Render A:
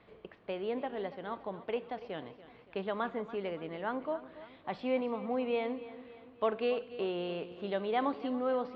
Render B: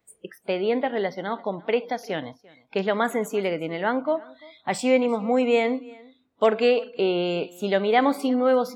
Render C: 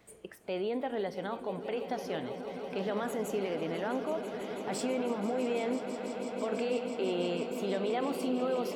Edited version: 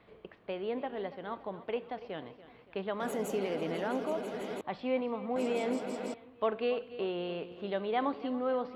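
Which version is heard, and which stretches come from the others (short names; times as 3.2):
A
3–4.61 from C
5.36–6.14 from C
not used: B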